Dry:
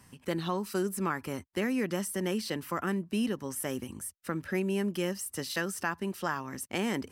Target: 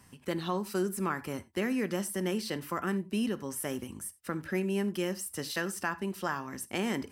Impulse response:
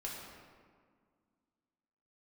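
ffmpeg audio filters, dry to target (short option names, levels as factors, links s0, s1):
-filter_complex "[0:a]asplit=2[s0][s1];[1:a]atrim=start_sample=2205,atrim=end_sample=4410[s2];[s1][s2]afir=irnorm=-1:irlink=0,volume=0.398[s3];[s0][s3]amix=inputs=2:normalize=0,volume=0.75"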